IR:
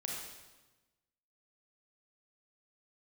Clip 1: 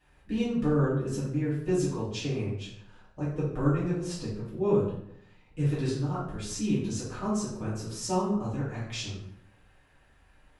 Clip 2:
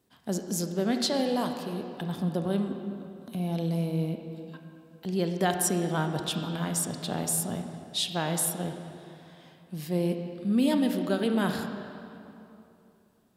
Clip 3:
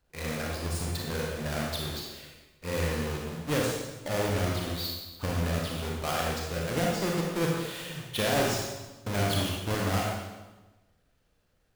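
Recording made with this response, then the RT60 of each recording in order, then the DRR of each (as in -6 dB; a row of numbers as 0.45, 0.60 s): 3; 0.70, 2.8, 1.2 s; -10.5, 5.0, -2.5 dB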